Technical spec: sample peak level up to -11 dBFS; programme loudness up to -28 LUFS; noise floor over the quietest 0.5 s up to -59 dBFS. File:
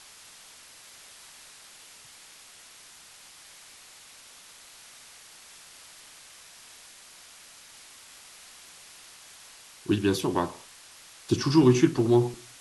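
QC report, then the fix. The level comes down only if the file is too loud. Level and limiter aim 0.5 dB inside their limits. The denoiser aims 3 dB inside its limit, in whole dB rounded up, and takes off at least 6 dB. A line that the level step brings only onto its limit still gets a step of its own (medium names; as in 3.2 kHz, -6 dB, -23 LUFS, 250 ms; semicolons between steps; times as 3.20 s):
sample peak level -7.0 dBFS: fail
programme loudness -24.0 LUFS: fail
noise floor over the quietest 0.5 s -51 dBFS: fail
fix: noise reduction 7 dB, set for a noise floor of -51 dBFS; trim -4.5 dB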